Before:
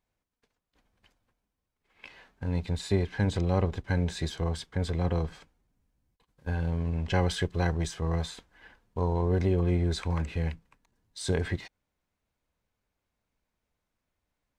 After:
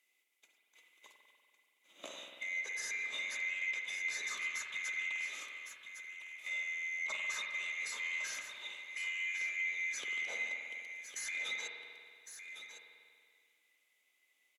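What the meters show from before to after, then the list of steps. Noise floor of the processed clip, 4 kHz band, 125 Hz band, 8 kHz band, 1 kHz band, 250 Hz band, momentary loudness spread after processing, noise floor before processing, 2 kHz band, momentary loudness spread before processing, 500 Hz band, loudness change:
-77 dBFS, -2.5 dB, under -40 dB, +1.5 dB, -16.0 dB, under -35 dB, 13 LU, -84 dBFS, +6.5 dB, 11 LU, -25.0 dB, -8.0 dB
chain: split-band scrambler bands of 2 kHz; high-pass 280 Hz 24 dB/octave; treble shelf 5.2 kHz +12 dB; in parallel at +3 dB: compression, threshold -36 dBFS, peak gain reduction 16.5 dB; on the sum: peak limiter -23 dBFS, peak gain reduction 14.5 dB; saturation -29 dBFS, distortion -15 dB; on a send: delay 1107 ms -10 dB; on the sum: spring tank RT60 2.1 s, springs 47 ms, chirp 40 ms, DRR 2.5 dB; low-pass that closes with the level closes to 2.7 kHz, closed at -21.5 dBFS; trim -6 dB

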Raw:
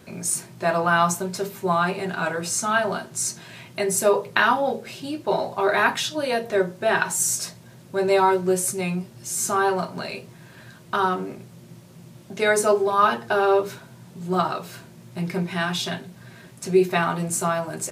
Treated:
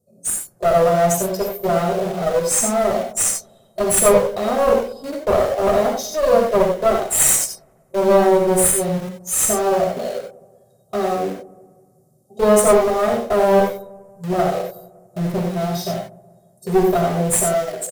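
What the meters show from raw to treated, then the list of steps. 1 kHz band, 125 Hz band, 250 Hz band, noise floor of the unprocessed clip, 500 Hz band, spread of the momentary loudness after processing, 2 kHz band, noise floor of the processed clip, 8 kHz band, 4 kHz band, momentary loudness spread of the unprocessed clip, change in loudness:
+1.5 dB, +4.5 dB, +5.0 dB, -47 dBFS, +7.0 dB, 13 LU, -6.0 dB, -56 dBFS, +7.5 dB, -1.0 dB, 13 LU, +5.0 dB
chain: Chebyshev band-stop 470–8700 Hz, order 2; spectral noise reduction 19 dB; bass shelf 91 Hz -9 dB; hum notches 60/120/180/240 Hz; comb 1.6 ms, depth 85%; level rider gain up to 6 dB; in parallel at -7.5 dB: bit crusher 5-bit; on the sum: one-sided clip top -20 dBFS; on a send: feedback echo behind a low-pass 187 ms, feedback 47%, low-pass 810 Hz, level -19 dB; on the sum: gated-style reverb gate 110 ms rising, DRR 2.5 dB; trim +1 dB

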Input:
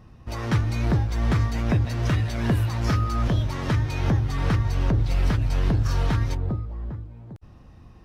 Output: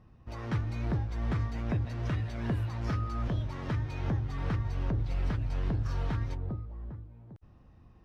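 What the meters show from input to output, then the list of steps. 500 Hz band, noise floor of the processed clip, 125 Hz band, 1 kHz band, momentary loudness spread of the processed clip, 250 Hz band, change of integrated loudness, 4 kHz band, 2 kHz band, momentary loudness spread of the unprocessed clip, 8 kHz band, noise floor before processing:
-9.0 dB, -57 dBFS, -9.0 dB, -9.5 dB, 10 LU, -9.0 dB, -9.0 dB, -13.0 dB, -10.5 dB, 10 LU, no reading, -48 dBFS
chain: low-pass 2.9 kHz 6 dB/octave; trim -9 dB

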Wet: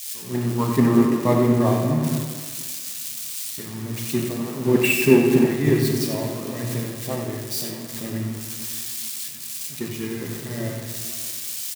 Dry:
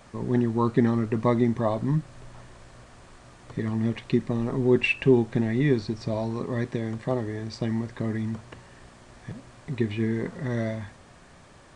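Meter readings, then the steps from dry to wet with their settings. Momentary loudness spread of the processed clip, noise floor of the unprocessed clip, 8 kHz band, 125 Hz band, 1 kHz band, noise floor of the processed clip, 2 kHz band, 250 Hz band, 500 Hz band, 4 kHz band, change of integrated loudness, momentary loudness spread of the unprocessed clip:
12 LU, -52 dBFS, no reading, +2.5 dB, +3.5 dB, -35 dBFS, +4.0 dB, +4.0 dB, +4.0 dB, +9.5 dB, +3.0 dB, 15 LU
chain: zero-crossing glitches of -20 dBFS; high-pass 120 Hz; on a send: delay 92 ms -7.5 dB; on the sum: simulated room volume 130 m³, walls hard, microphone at 0.37 m; three bands expanded up and down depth 100%; trim -1 dB

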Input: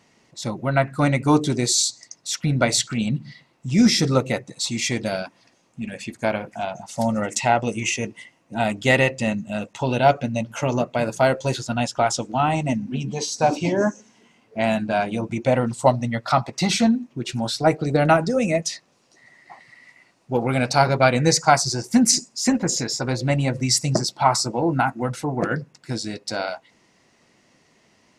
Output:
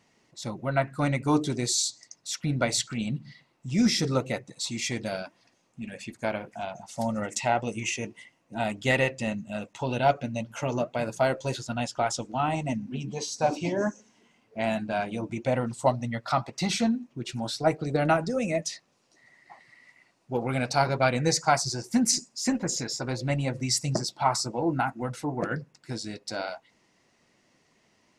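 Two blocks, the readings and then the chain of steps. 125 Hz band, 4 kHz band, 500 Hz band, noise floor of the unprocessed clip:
-7.0 dB, -6.5 dB, -6.5 dB, -61 dBFS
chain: flange 1.8 Hz, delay 0.3 ms, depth 3.2 ms, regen +83%; trim -2 dB

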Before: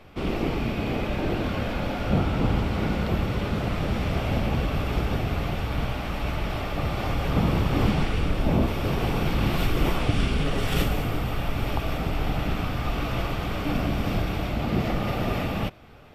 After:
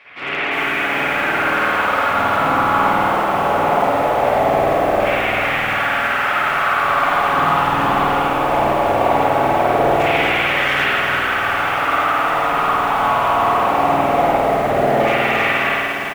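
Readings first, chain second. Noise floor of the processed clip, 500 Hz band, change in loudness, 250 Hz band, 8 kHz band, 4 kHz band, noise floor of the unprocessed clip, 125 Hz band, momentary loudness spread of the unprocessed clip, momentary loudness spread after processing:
-20 dBFS, +12.5 dB, +10.5 dB, +2.0 dB, +6.5 dB, +9.0 dB, -31 dBFS, -5.0 dB, 5 LU, 2 LU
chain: hum notches 60/120/180/240/300/360/420/480 Hz; comb 7.1 ms, depth 32%; in parallel at -1 dB: peak limiter -19 dBFS, peak gain reduction 9.5 dB; on the sum: LFO band-pass saw down 0.2 Hz 590–2100 Hz; overload inside the chain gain 29.5 dB; on a send: feedback delay 1010 ms, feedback 55%, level -17.5 dB; on the sum: spring tank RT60 1.6 s, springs 50 ms, chirp 55 ms, DRR -9.5 dB; bit-crushed delay 350 ms, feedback 55%, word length 7-bit, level -7 dB; trim +7.5 dB

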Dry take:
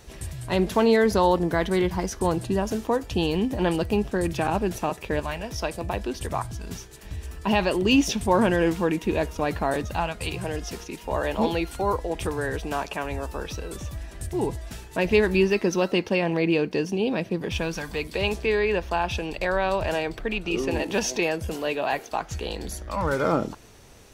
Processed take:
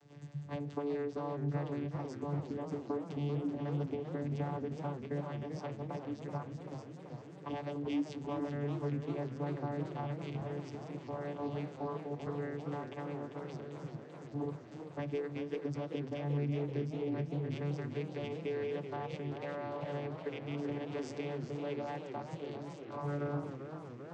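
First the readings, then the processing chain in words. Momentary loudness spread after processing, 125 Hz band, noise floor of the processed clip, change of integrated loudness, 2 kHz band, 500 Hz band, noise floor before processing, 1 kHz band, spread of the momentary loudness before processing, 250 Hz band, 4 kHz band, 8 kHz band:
8 LU, -7.0 dB, -50 dBFS, -14.0 dB, -21.0 dB, -14.5 dB, -44 dBFS, -16.5 dB, 12 LU, -12.5 dB, -22.0 dB, under -25 dB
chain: self-modulated delay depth 0.089 ms; compression, threshold -23 dBFS, peak gain reduction 8.5 dB; vocoder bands 16, saw 144 Hz; modulated delay 389 ms, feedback 75%, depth 150 cents, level -9.5 dB; trim -9 dB

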